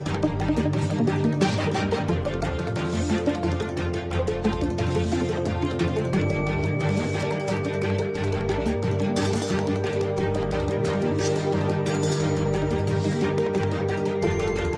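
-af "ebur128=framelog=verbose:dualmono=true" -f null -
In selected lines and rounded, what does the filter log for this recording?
Integrated loudness:
  I:         -21.9 LUFS
  Threshold: -31.9 LUFS
Loudness range:
  LRA:         1.4 LU
  Threshold: -42.0 LUFS
  LRA low:   -22.7 LUFS
  LRA high:  -21.4 LUFS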